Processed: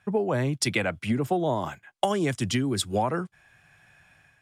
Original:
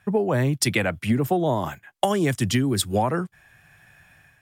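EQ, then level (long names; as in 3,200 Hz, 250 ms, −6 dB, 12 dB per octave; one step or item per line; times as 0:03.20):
low-pass filter 9,100 Hz 12 dB per octave
low-shelf EQ 190 Hz −4 dB
notch filter 1,800 Hz, Q 17
−2.5 dB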